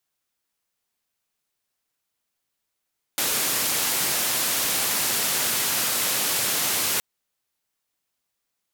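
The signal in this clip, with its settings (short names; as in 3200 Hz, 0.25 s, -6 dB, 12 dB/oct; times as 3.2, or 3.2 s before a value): noise band 120–16000 Hz, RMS -24 dBFS 3.82 s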